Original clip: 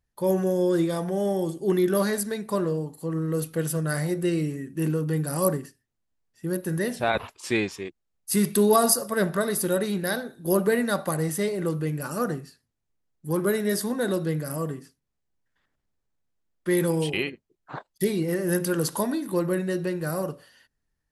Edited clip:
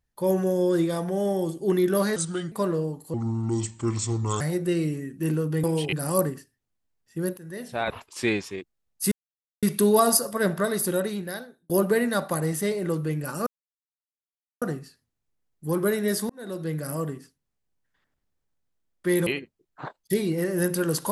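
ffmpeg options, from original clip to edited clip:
-filter_complex "[0:a]asplit=13[a][b][c][d][e][f][g][h][i][j][k][l][m];[a]atrim=end=2.164[n];[b]atrim=start=2.16:end=2.45,asetpts=PTS-STARTPTS,asetrate=35721,aresample=44100[o];[c]atrim=start=2.446:end=3.074[p];[d]atrim=start=3.07:end=3.97,asetpts=PTS-STARTPTS,asetrate=31311,aresample=44100,atrim=end_sample=55901,asetpts=PTS-STARTPTS[q];[e]atrim=start=3.966:end=5.202[r];[f]atrim=start=16.878:end=17.172[s];[g]atrim=start=5.198:end=6.65,asetpts=PTS-STARTPTS,afade=t=out:st=1.448:d=0.004:c=hsin:silence=0.105925[t];[h]atrim=start=6.65:end=8.39,asetpts=PTS-STARTPTS,afade=t=in:d=0.74:silence=0.105925,afade=t=out:st=1.736:d=0.004:c=hsin,apad=pad_dur=0.51[u];[i]atrim=start=8.39:end=10.46,asetpts=PTS-STARTPTS,afade=t=in:d=0.004:c=hsin,afade=t=out:st=1.25:d=0.82[v];[j]atrim=start=10.46:end=12.23,asetpts=PTS-STARTPTS,afade=t=in:d=0.004:c=hsin,afade=t=out:st=1.766:d=0.004:c=hsin,apad=pad_dur=1.15[w];[k]atrim=start=12.23:end=13.91,asetpts=PTS-STARTPTS,afade=t=in:d=0.004:c=hsin,afade=t=out:st=1.676:d=0.004:c=hsin[x];[l]atrim=start=13.91:end=16.882,asetpts=PTS-STARTPTS,afade=t=in:d=0.56[y];[m]atrim=start=17.168[z];[n][o]acrossfade=d=0.004:c1=hsin:c2=hsin[aa];[aa][p]acrossfade=d=0.004:c1=hsin:c2=hsin[ab];[ab][q]acrossfade=d=0.004:c1=hsin:c2=hsin[ac];[ac][r]acrossfade=d=0.004:c1=hsin:c2=hsin[ad];[ad][s]acrossfade=d=0.004:c1=hsin:c2=hsin[ae];[t][u][v][w][x][y]concat=n=6:v=0:a=1[af];[ae][af]acrossfade=d=0.004:c1=hsin:c2=hsin[ag];[ag][z]acrossfade=d=0.004:c1=hsin:c2=hsin"

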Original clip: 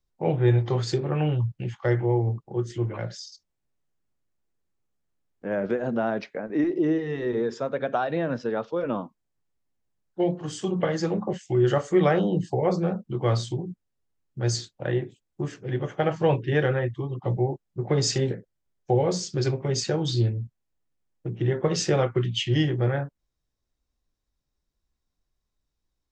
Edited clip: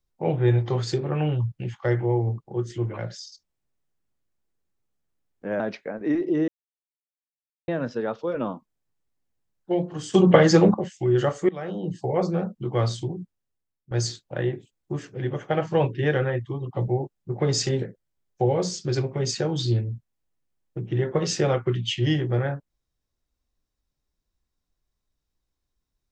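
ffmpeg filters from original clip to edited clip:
-filter_complex "[0:a]asplit=8[a][b][c][d][e][f][g][h];[a]atrim=end=5.602[i];[b]atrim=start=6.088:end=6.97,asetpts=PTS-STARTPTS,afade=t=out:st=0.878:d=0.004:c=hsin[j];[c]atrim=start=6.97:end=8.17,asetpts=PTS-STARTPTS,volume=0[k];[d]atrim=start=8.17:end=10.632,asetpts=PTS-STARTPTS,afade=t=in:d=0.004:c=hsin[l];[e]atrim=start=10.628:end=11.232,asetpts=PTS-STARTPTS,volume=10.5dB[m];[f]atrim=start=11.228:end=11.98,asetpts=PTS-STARTPTS,afade=t=out:st=0.748:d=0.004:c=hsin:silence=0.0794328[n];[g]atrim=start=11.98:end=14.4,asetpts=PTS-STARTPTS,afade=t=in:d=0.7:silence=0.0794328,afade=t=out:st=1.69:d=0.73:silence=0.16788[o];[h]atrim=start=14.4,asetpts=PTS-STARTPTS,afade=t=in:d=0.004:c=hsin:silence=0.16788[p];[j][k][l]concat=n=3:v=0:a=1[q];[i][q]acrossfade=d=0.004:c1=hsin:c2=hsin[r];[r][m]acrossfade=d=0.004:c1=hsin:c2=hsin[s];[n][o][p]concat=n=3:v=0:a=1[t];[s][t]acrossfade=d=0.004:c1=hsin:c2=hsin"

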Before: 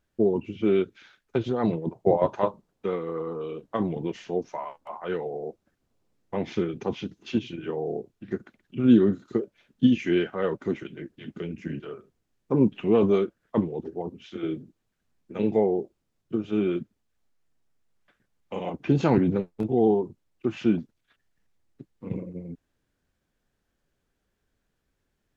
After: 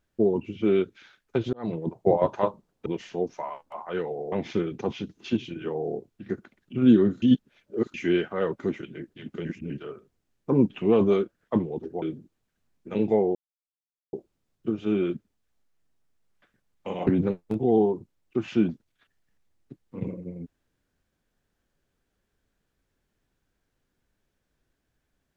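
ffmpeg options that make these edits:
-filter_complex "[0:a]asplit=11[a][b][c][d][e][f][g][h][i][j][k];[a]atrim=end=1.53,asetpts=PTS-STARTPTS,afade=t=out:st=1.526:d=0.004:c=hsin[l];[b]atrim=start=1.53:end=2.862,asetpts=PTS-STARTPTS,afade=t=in:d=0.29[m];[c]atrim=start=4.008:end=5.472[n];[d]atrim=start=6.338:end=9.242[o];[e]atrim=start=9.238:end=9.962,asetpts=PTS-STARTPTS,areverse[p];[f]atrim=start=9.958:end=11.472[q];[g]atrim=start=11.468:end=11.722,asetpts=PTS-STARTPTS,areverse[r];[h]atrim=start=11.718:end=14.042[s];[i]atrim=start=14.458:end=15.79,asetpts=PTS-STARTPTS,afade=t=out:st=1.328:d=0.004:c=hsin,apad=pad_dur=0.78[t];[j]atrim=start=15.79:end=18.732,asetpts=PTS-STARTPTS,afade=t=in:d=0.004:c=hsin[u];[k]atrim=start=19.158[v];[l][m]concat=n=2:v=0:a=1[w];[w][n]acrossfade=d=0.004:c1=hsin:c2=hsin[x];[x][o]acrossfade=d=0.004:c1=hsin:c2=hsin[y];[y][p]acrossfade=d=0.004:c1=hsin:c2=hsin[z];[z][q]acrossfade=d=0.004:c1=hsin:c2=hsin[aa];[aa][r]acrossfade=d=0.004:c1=hsin:c2=hsin[ab];[ab][s]acrossfade=d=0.004:c1=hsin:c2=hsin[ac];[t][u]concat=n=2:v=0:a=1[ad];[ac][ad]acrossfade=d=0.004:c1=hsin:c2=hsin[ae];[ae][v]acrossfade=d=0.004:c1=hsin:c2=hsin"

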